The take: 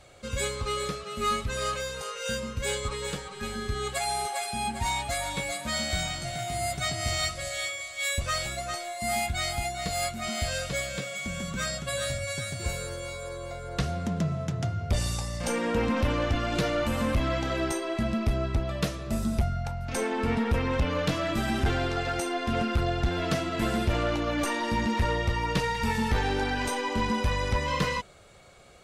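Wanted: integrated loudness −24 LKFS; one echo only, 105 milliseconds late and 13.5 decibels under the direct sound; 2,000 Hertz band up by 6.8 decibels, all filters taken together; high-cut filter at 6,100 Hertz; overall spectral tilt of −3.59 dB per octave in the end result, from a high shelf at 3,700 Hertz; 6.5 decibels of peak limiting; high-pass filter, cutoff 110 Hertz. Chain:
high-pass filter 110 Hz
low-pass filter 6,100 Hz
parametric band 2,000 Hz +7 dB
high-shelf EQ 3,700 Hz +4 dB
brickwall limiter −18.5 dBFS
single-tap delay 105 ms −13.5 dB
level +4 dB

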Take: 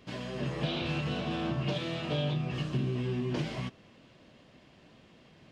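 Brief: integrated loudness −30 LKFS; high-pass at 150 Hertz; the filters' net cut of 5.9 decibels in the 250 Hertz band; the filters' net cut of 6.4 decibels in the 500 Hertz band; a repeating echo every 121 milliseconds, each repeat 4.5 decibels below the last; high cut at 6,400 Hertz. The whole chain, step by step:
high-pass filter 150 Hz
low-pass filter 6,400 Hz
parametric band 250 Hz −5 dB
parametric band 500 Hz −7 dB
repeating echo 121 ms, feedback 60%, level −4.5 dB
level +5.5 dB

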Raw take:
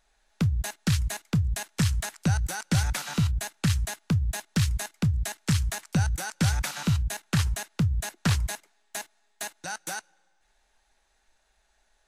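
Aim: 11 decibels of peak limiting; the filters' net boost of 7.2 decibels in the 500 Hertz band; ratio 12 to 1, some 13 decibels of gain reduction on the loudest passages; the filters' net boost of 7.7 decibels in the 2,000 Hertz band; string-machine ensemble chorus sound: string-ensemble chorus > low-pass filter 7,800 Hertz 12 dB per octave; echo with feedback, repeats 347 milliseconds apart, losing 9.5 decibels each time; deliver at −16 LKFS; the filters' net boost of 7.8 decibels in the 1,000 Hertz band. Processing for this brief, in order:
parametric band 500 Hz +7 dB
parametric band 1,000 Hz +6 dB
parametric band 2,000 Hz +7.5 dB
downward compressor 12 to 1, threshold −31 dBFS
brickwall limiter −25 dBFS
repeating echo 347 ms, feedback 33%, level −9.5 dB
string-ensemble chorus
low-pass filter 7,800 Hz 12 dB per octave
level +25 dB

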